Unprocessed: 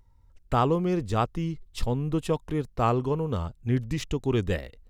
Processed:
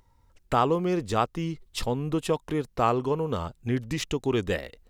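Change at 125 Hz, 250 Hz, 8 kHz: -4.0, -0.5, +4.5 dB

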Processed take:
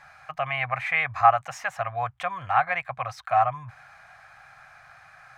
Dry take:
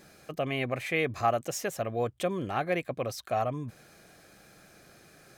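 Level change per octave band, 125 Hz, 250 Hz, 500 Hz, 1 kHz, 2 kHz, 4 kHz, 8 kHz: -1.5 dB, under -10 dB, -1.5 dB, +10.5 dB, +8.0 dB, -0.5 dB, n/a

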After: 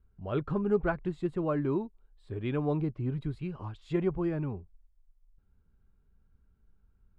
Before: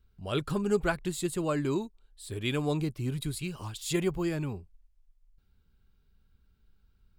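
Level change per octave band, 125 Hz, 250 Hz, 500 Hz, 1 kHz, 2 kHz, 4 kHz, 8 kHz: 0.0 dB, 0.0 dB, 0.0 dB, -1.0 dB, -5.0 dB, -16.0 dB, under -30 dB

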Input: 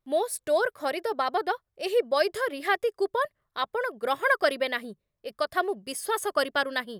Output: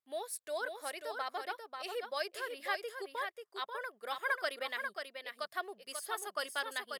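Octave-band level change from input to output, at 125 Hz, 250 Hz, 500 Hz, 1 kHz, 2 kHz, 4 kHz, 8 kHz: n/a, -19.0 dB, -15.0 dB, -11.0 dB, -9.0 dB, -7.5 dB, -7.0 dB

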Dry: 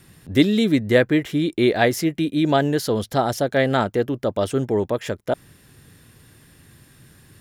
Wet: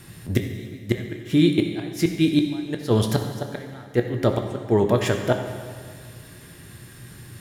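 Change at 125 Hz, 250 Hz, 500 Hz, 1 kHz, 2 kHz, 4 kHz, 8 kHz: +1.5, -2.0, -4.0, -7.0, -7.0, -3.0, -2.5 dB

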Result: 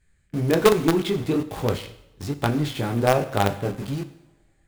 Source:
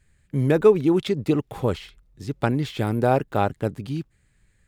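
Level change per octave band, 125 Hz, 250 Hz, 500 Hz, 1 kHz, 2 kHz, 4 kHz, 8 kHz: -0.5, -0.5, -1.0, +1.0, +3.0, +5.5, +10.5 dB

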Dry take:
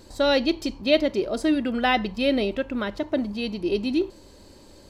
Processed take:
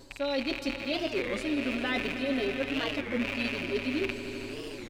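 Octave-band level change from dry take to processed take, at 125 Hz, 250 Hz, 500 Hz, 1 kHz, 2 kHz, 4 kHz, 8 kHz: -3.5 dB, -7.0 dB, -8.0 dB, -10.5 dB, -2.0 dB, -5.5 dB, n/a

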